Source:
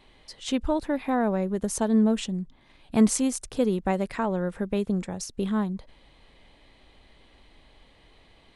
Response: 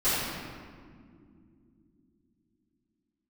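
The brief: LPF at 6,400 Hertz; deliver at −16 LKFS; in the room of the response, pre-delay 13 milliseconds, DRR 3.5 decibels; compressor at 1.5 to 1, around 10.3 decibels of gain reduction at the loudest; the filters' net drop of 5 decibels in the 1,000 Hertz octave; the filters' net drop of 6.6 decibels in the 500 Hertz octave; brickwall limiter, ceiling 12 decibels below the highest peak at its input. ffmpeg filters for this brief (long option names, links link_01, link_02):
-filter_complex "[0:a]lowpass=6400,equalizer=frequency=500:width_type=o:gain=-7.5,equalizer=frequency=1000:width_type=o:gain=-3.5,acompressor=threshold=-45dB:ratio=1.5,alimiter=level_in=9.5dB:limit=-24dB:level=0:latency=1,volume=-9.5dB,asplit=2[link_01][link_02];[1:a]atrim=start_sample=2205,adelay=13[link_03];[link_02][link_03]afir=irnorm=-1:irlink=0,volume=-17dB[link_04];[link_01][link_04]amix=inputs=2:normalize=0,volume=24dB"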